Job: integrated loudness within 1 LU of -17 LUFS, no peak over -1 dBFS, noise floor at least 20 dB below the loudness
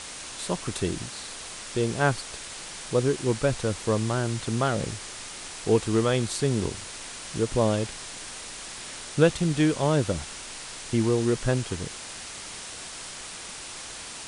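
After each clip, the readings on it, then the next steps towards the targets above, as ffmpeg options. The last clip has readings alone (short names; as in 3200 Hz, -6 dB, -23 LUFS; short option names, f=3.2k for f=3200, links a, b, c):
noise floor -40 dBFS; noise floor target -48 dBFS; loudness -28.0 LUFS; peak -7.0 dBFS; loudness target -17.0 LUFS
-> -af "afftdn=nr=8:nf=-40"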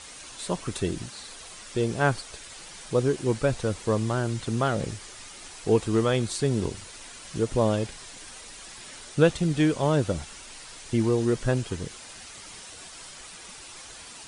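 noise floor -44 dBFS; noise floor target -47 dBFS
-> -af "afftdn=nr=6:nf=-44"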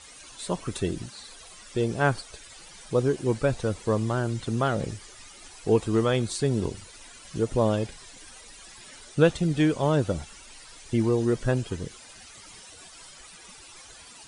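noise floor -48 dBFS; loudness -26.5 LUFS; peak -7.0 dBFS; loudness target -17.0 LUFS
-> -af "volume=9.5dB,alimiter=limit=-1dB:level=0:latency=1"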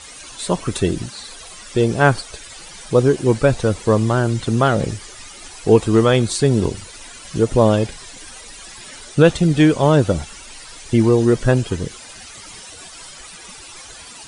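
loudness -17.5 LUFS; peak -1.0 dBFS; noise floor -39 dBFS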